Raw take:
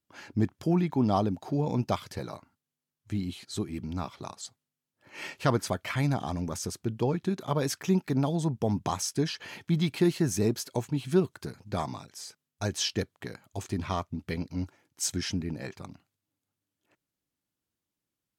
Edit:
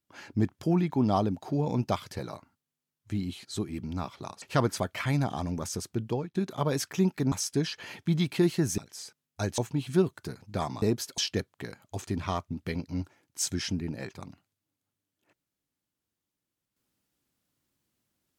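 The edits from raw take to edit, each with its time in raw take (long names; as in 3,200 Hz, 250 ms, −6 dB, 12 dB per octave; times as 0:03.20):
0:04.42–0:05.32: remove
0:06.96–0:07.25: fade out, to −23.5 dB
0:08.22–0:08.94: remove
0:10.40–0:10.76: swap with 0:12.00–0:12.80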